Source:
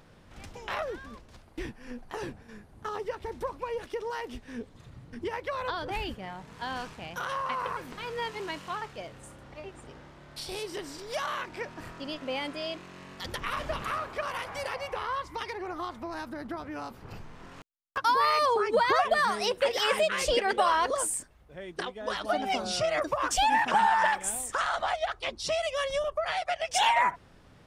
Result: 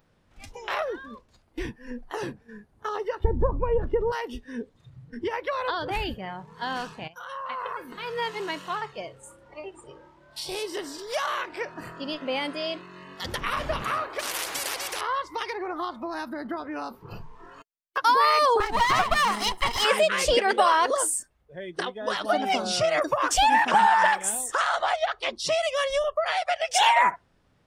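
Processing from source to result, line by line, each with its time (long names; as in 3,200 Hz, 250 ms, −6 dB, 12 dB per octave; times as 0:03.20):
0:03.24–0:04.12: spectral tilt −4.5 dB per octave
0:07.08–0:08.24: fade in, from −13.5 dB
0:14.19–0:15.01: every bin compressed towards the loudest bin 4 to 1
0:18.60–0:19.85: lower of the sound and its delayed copy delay 0.98 ms
whole clip: noise reduction from a noise print of the clip's start 14 dB; level +4.5 dB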